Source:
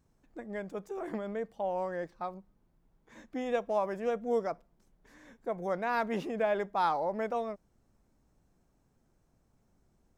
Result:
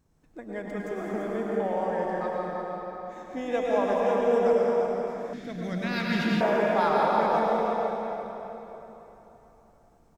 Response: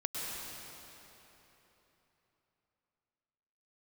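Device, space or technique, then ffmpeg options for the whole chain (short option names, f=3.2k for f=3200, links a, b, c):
cave: -filter_complex "[0:a]aecho=1:1:340:0.398[a];[1:a]atrim=start_sample=2205[b];[a][b]afir=irnorm=-1:irlink=0,asettb=1/sr,asplit=3[c][d][e];[c]atrim=end=5.334[f];[d]atrim=start=5.33:end=6.41,asetpts=PTS-STARTPTS,afade=t=in:d=0.004:c=qsin,afade=t=out:st=1.076:d=0.004:c=qsin,equalizer=f=125:t=o:w=1:g=10,equalizer=f=250:t=o:w=1:g=6,equalizer=f=500:t=o:w=1:g=-11,equalizer=f=1k:t=o:w=1:g=-12,equalizer=f=2k:t=o:w=1:g=4,equalizer=f=4k:t=o:w=1:g=11[g];[e]atrim=start=6.406[h];[f][g]acrossfade=d=0.004:c1=hsin:c2=qsin[i];[i][h]acrossfade=d=0.004:c1=qsin:c2=hsin,volume=3dB"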